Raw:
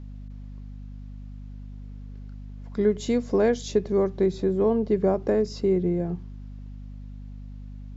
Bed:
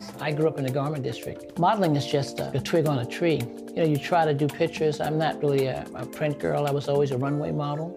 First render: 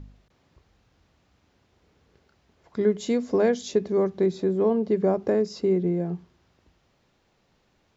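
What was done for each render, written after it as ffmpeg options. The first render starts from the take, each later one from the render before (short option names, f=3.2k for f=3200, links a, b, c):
-af "bandreject=f=50:t=h:w=4,bandreject=f=100:t=h:w=4,bandreject=f=150:t=h:w=4,bandreject=f=200:t=h:w=4,bandreject=f=250:t=h:w=4"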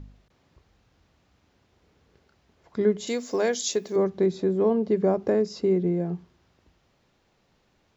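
-filter_complex "[0:a]asettb=1/sr,asplit=3[a][b][c];[a]atrim=end=3.074[d];[b]atrim=start=3.07:end=3.96,asetpts=PTS-STARTPTS,afade=t=in:d=0.004:c=qsin,afade=t=out:st=0.886:d=0.004:c=qsin,aemphasis=mode=production:type=riaa[e];[c]atrim=start=3.956[f];[d][e]acrossfade=d=0.004:c1=hsin:c2=qsin[g];[g][f]acrossfade=d=0.004:c1=qsin:c2=hsin"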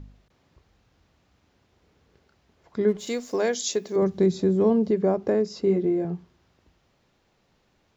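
-filter_complex "[0:a]asettb=1/sr,asplit=3[a][b][c];[a]atrim=end=2.884[d];[b]atrim=start=2.88:end=3.33,asetpts=PTS-STARTPTS,afade=t=in:d=0.004:c=qsin,afade=t=out:st=0.446:d=0.004:c=qsin,aeval=exprs='sgn(val(0))*max(abs(val(0))-0.00282,0)':c=same[e];[c]atrim=start=3.326[f];[d][e]acrossfade=d=0.004:c1=hsin:c2=qsin[g];[g][f]acrossfade=d=0.004:c1=qsin:c2=hsin,asettb=1/sr,asplit=3[h][i][j];[h]atrim=end=4.024[k];[i]atrim=start=4.02:end=4.91,asetpts=PTS-STARTPTS,afade=t=in:d=0.004:c=qsin,afade=t=out:st=0.886:d=0.004:c=qsin,bass=f=250:g=7,treble=f=4k:g=8[l];[j]atrim=start=4.906[m];[k][l]acrossfade=d=0.004:c1=hsin:c2=qsin[n];[n][m]acrossfade=d=0.004:c1=qsin:c2=hsin,asettb=1/sr,asplit=3[o][p][q];[o]atrim=end=5.654[r];[p]atrim=start=5.65:end=6.05,asetpts=PTS-STARTPTS,afade=t=in:d=0.004:c=qsin,afade=t=out:st=0.396:d=0.004:c=qsin,asplit=2[s][t];[t]adelay=20,volume=-4dB[u];[s][u]amix=inputs=2:normalize=0,atrim=end_sample=17640[v];[q]atrim=start=6.046[w];[r][v]acrossfade=d=0.004:c1=hsin:c2=qsin[x];[x][w]acrossfade=d=0.004:c1=qsin:c2=hsin"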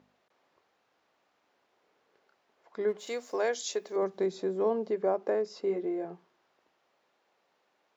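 -af "highpass=560,highshelf=f=2.4k:g=-9.5"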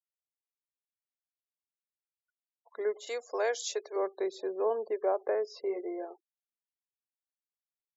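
-af "highpass=f=390:w=0.5412,highpass=f=390:w=1.3066,afftfilt=real='re*gte(hypot(re,im),0.00355)':imag='im*gte(hypot(re,im),0.00355)':win_size=1024:overlap=0.75"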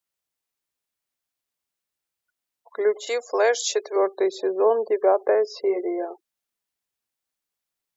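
-af "volume=10.5dB"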